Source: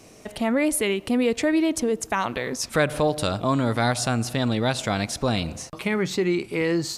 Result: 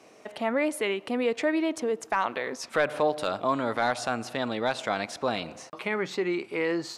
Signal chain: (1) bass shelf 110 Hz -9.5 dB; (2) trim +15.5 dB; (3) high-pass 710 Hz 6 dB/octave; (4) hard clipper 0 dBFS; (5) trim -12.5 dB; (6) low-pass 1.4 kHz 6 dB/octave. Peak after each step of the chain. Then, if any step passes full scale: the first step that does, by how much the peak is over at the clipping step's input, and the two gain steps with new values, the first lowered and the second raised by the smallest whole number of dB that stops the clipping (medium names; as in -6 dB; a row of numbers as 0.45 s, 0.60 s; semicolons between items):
-8.5 dBFS, +7.0 dBFS, +7.0 dBFS, 0.0 dBFS, -12.5 dBFS, -13.0 dBFS; step 2, 7.0 dB; step 2 +8.5 dB, step 5 -5.5 dB